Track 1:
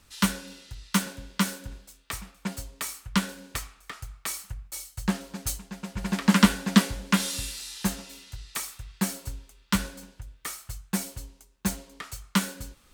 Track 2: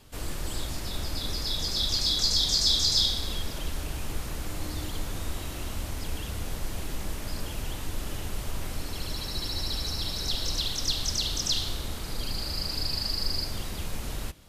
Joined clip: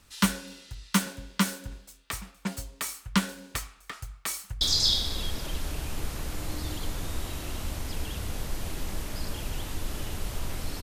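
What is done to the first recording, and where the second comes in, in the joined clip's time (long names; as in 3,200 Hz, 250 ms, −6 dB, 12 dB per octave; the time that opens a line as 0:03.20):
track 1
0:04.30–0:04.61: delay throw 320 ms, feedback 35%, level −8.5 dB
0:04.61: continue with track 2 from 0:02.73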